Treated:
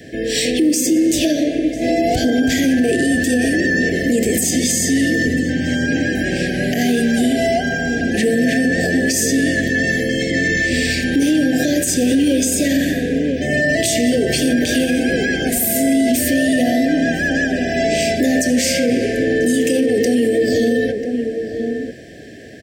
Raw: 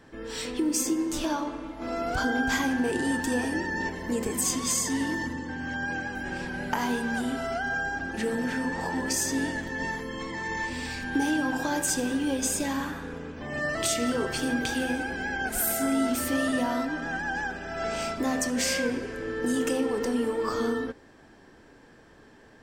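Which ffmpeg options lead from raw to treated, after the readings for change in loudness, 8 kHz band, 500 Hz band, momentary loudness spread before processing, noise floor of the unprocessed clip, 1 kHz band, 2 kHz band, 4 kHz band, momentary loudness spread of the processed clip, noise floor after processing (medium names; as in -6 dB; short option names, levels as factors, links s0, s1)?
+12.0 dB, +9.5 dB, +13.5 dB, 8 LU, -54 dBFS, +3.5 dB, +10.5 dB, +12.0 dB, 4 LU, -25 dBFS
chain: -filter_complex "[0:a]highpass=69,highshelf=f=12000:g=3.5,acrossover=split=430[s0][s1];[s1]acompressor=threshold=0.0355:ratio=6[s2];[s0][s2]amix=inputs=2:normalize=0,asuperstop=centerf=1100:order=20:qfactor=1.2,asplit=2[s3][s4];[s4]adelay=991.3,volume=0.316,highshelf=f=4000:g=-22.3[s5];[s3][s5]amix=inputs=2:normalize=0,alimiter=level_in=15.8:limit=0.891:release=50:level=0:latency=1,volume=0.447"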